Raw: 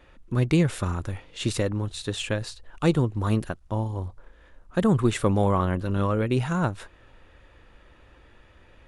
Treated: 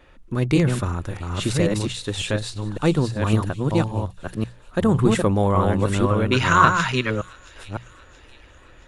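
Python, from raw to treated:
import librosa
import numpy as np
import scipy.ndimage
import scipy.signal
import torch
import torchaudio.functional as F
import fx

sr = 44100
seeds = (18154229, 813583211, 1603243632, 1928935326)

p1 = fx.reverse_delay(x, sr, ms=555, wet_db=-2.5)
p2 = fx.spec_box(p1, sr, start_s=6.32, length_s=0.78, low_hz=920.0, high_hz=7400.0, gain_db=12)
p3 = fx.hum_notches(p2, sr, base_hz=60, count=3)
p4 = p3 + fx.echo_wet_highpass(p3, sr, ms=675, feedback_pct=50, hz=2700.0, wet_db=-18.0, dry=0)
y = F.gain(torch.from_numpy(p4), 2.5).numpy()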